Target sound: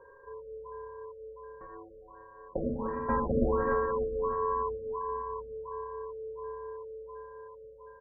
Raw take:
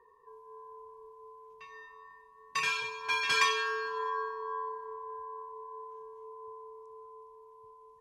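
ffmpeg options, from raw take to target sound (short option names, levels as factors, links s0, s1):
-filter_complex "[0:a]equalizer=f=550:t=o:w=1.8:g=10.5,aeval=exprs='val(0)+0.002*sin(2*PI*1600*n/s)':c=same,acrossover=split=1400[s0][s1];[s1]acrusher=samples=41:mix=1:aa=0.000001[s2];[s0][s2]amix=inputs=2:normalize=0,asuperstop=centerf=3400:order=12:qfactor=0.95,asplit=2[s3][s4];[s4]adelay=45,volume=0.237[s5];[s3][s5]amix=inputs=2:normalize=0,asplit=2[s6][s7];[s7]aecho=0:1:298|596|894|1192|1490|1788|2086:0.282|0.163|0.0948|0.055|0.0319|0.0185|0.0107[s8];[s6][s8]amix=inputs=2:normalize=0,afftfilt=real='re*lt(b*sr/1024,640*pow(3200/640,0.5+0.5*sin(2*PI*1.4*pts/sr)))':imag='im*lt(b*sr/1024,640*pow(3200/640,0.5+0.5*sin(2*PI*1.4*pts/sr)))':win_size=1024:overlap=0.75"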